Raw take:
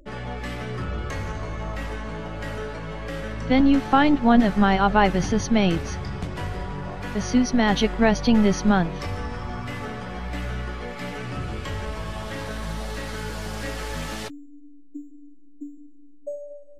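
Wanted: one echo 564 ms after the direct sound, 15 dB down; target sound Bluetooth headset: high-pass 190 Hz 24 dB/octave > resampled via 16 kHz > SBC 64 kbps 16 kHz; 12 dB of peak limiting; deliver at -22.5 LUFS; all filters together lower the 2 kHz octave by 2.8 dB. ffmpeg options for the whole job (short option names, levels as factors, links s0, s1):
-af "equalizer=f=2000:t=o:g=-3.5,alimiter=limit=0.158:level=0:latency=1,highpass=f=190:w=0.5412,highpass=f=190:w=1.3066,aecho=1:1:564:0.178,aresample=16000,aresample=44100,volume=2.66" -ar 16000 -c:a sbc -b:a 64k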